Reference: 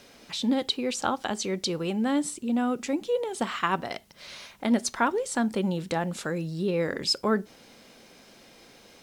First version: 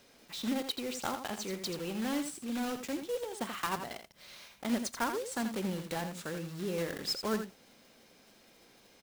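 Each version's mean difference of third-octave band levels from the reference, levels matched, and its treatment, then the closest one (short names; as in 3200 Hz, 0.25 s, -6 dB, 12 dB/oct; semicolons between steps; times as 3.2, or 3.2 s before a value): 6.5 dB: block floating point 3-bit; echo 83 ms -8.5 dB; gain -9 dB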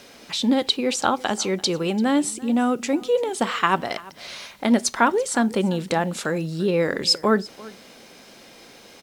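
1.5 dB: low shelf 130 Hz -6 dB; echo 0.341 s -21 dB; gain +6.5 dB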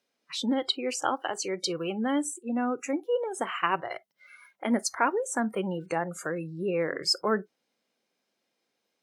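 10.0 dB: spectral noise reduction 26 dB; Bessel high-pass 230 Hz, order 2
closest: second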